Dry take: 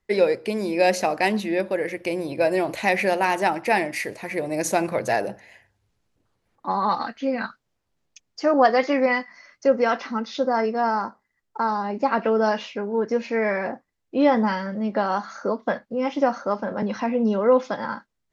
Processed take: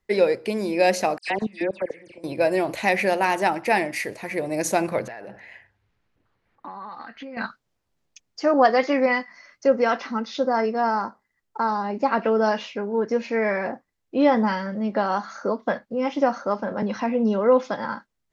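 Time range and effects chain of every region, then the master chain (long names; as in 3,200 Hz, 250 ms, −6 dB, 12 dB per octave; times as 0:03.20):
0:01.18–0:02.24: linear-phase brick-wall low-pass 9,700 Hz + output level in coarse steps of 23 dB + all-pass dispersion lows, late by 97 ms, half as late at 2,500 Hz
0:05.04–0:07.37: drawn EQ curve 600 Hz 0 dB, 1,900 Hz +6 dB, 4,200 Hz −2 dB, 7,600 Hz −10 dB + downward compressor 16 to 1, threshold −33 dBFS
whole clip: no processing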